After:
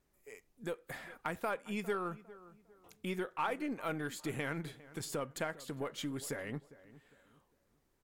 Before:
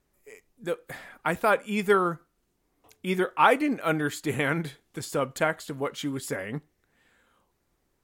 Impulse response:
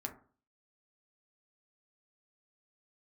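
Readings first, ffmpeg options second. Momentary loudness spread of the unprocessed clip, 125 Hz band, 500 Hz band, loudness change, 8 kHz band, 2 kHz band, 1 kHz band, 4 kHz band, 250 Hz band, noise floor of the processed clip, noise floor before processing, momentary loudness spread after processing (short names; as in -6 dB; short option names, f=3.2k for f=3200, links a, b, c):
16 LU, -10.0 dB, -12.5 dB, -12.5 dB, -7.0 dB, -13.0 dB, -14.0 dB, -9.5 dB, -10.5 dB, -76 dBFS, -74 dBFS, 17 LU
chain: -filter_complex "[0:a]acompressor=threshold=-34dB:ratio=2.5,aeval=exprs='0.119*(cos(1*acos(clip(val(0)/0.119,-1,1)))-cos(1*PI/2))+0.00237*(cos(8*acos(clip(val(0)/0.119,-1,1)))-cos(8*PI/2))':c=same,asplit=2[a][b];[b]adelay=404,lowpass=f=1.6k:p=1,volume=-17.5dB,asplit=2[c][d];[d]adelay=404,lowpass=f=1.6k:p=1,volume=0.34,asplit=2[e][f];[f]adelay=404,lowpass=f=1.6k:p=1,volume=0.34[g];[c][e][g]amix=inputs=3:normalize=0[h];[a][h]amix=inputs=2:normalize=0,volume=-4dB"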